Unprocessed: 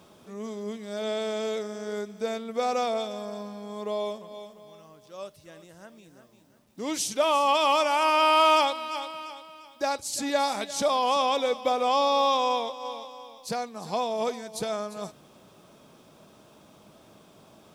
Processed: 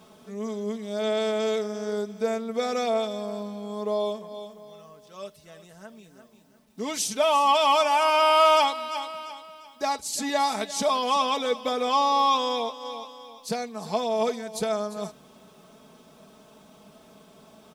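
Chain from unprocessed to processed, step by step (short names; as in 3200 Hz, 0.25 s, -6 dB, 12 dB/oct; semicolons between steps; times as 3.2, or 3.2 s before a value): comb 4.6 ms, depth 65%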